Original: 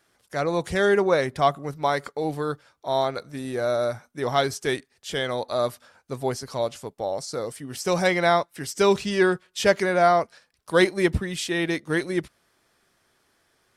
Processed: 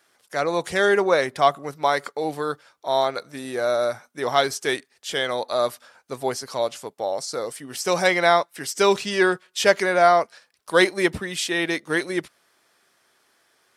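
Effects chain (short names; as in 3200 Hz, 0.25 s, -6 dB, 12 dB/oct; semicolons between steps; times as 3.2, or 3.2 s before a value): HPF 450 Hz 6 dB/oct; gain +4 dB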